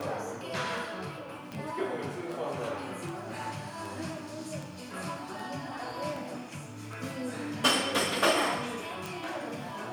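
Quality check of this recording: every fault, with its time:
scratch tick
0:01.52: click −26 dBFS
0:09.06: click

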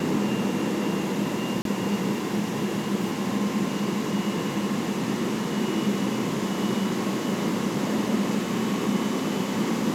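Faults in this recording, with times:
0:01.62–0:01.65: drop-out 32 ms

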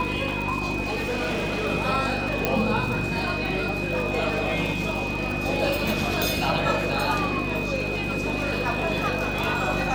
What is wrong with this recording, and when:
surface crackle 75 per second −30 dBFS
mains hum 50 Hz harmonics 7 −31 dBFS
whistle 2,500 Hz −30 dBFS
0:00.82–0:01.67: clipping −23 dBFS
0:02.45: click −7 dBFS
0:06.22: click

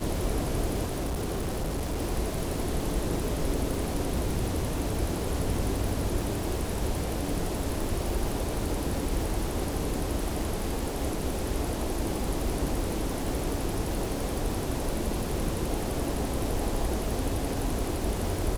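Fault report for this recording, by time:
surface crackle 390 per second −34 dBFS
0:00.84–0:02.01: clipping −26.5 dBFS

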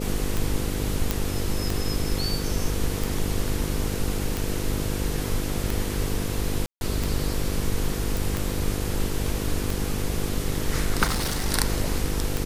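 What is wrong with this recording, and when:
mains buzz 50 Hz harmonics 10 −30 dBFS
scratch tick 45 rpm
0:01.11: click
0:06.66–0:06.81: drop-out 151 ms
0:08.17: click
0:11.04–0:11.46: clipping −21.5 dBFS

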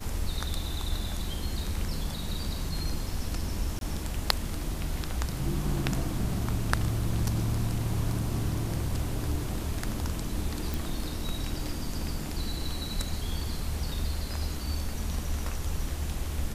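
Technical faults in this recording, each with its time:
0:03.79–0:03.81: drop-out 22 ms
0:10.74: click

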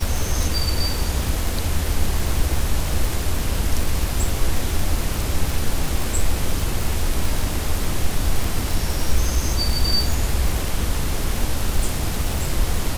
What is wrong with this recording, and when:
surface crackle 110 per second −21 dBFS

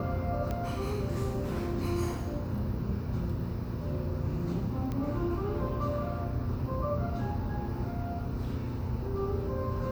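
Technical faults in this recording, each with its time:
0:00.51: click −21 dBFS
0:04.92: click −23 dBFS

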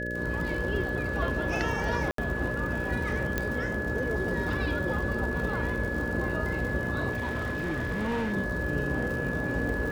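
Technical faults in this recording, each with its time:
mains buzz 60 Hz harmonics 10 −35 dBFS
surface crackle 110 per second −35 dBFS
whistle 1,700 Hz −33 dBFS
0:02.11–0:02.18: drop-out 73 ms
0:03.38: click −13 dBFS
0:07.11–0:08.34: clipping −26.5 dBFS

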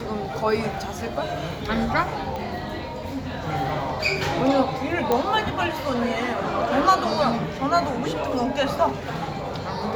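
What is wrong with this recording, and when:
0:02.36: click −18 dBFS
0:05.12: click −8 dBFS

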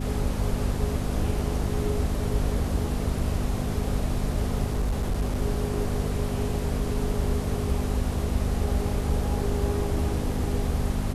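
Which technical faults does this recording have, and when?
mains hum 50 Hz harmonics 5 −31 dBFS
0:04.65–0:05.42: clipping −21.5 dBFS

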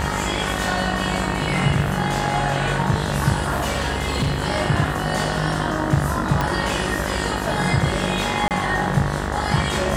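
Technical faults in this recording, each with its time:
mains buzz 50 Hz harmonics 39 −27 dBFS
0:03.34–0:04.42: clipping −16 dBFS
0:06.41: click −7 dBFS
0:08.48–0:08.51: drop-out 28 ms

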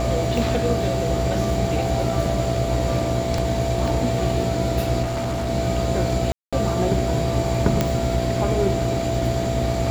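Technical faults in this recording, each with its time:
mains buzz 60 Hz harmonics 13 −27 dBFS
whistle 670 Hz −25 dBFS
0:03.38: drop-out 3 ms
0:05.02–0:05.50: clipping −21 dBFS
0:06.32–0:06.53: drop-out 206 ms
0:07.81: click −5 dBFS

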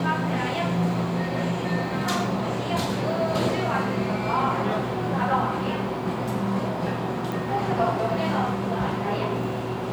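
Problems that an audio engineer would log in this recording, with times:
0:07.32: click

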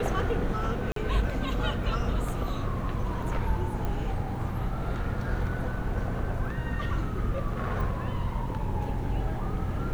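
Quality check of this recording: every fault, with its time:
0:00.92–0:00.96: drop-out 43 ms
0:03.85: click −20 dBFS

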